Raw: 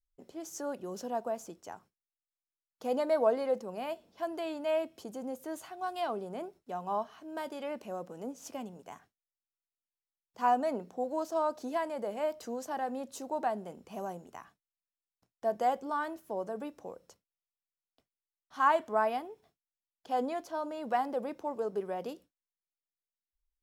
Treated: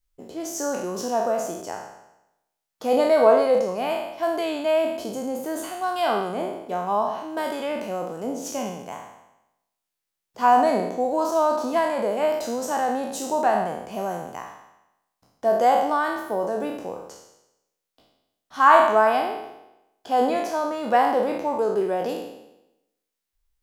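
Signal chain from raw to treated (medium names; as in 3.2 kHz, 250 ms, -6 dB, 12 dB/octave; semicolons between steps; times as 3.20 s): spectral sustain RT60 0.89 s; trim +9 dB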